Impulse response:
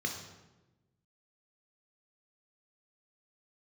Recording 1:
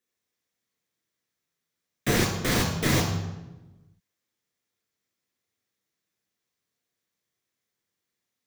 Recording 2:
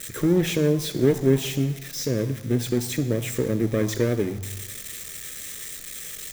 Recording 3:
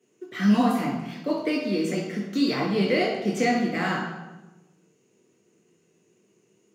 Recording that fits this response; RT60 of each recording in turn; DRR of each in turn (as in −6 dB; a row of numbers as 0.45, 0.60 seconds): 1; 1.1, 1.1, 1.1 seconds; 2.0, 11.5, −2.0 decibels